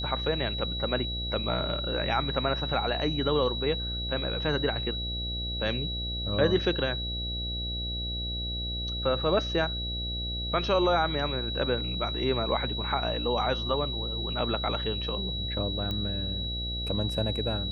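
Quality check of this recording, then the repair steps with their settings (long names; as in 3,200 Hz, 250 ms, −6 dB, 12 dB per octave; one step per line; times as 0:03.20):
mains buzz 60 Hz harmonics 12 −35 dBFS
whistle 3,900 Hz −33 dBFS
0:15.91: click −20 dBFS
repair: click removal
hum removal 60 Hz, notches 12
notch filter 3,900 Hz, Q 30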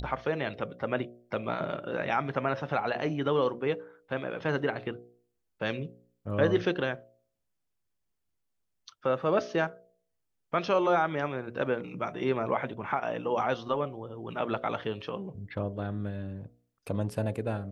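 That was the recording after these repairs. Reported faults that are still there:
none of them is left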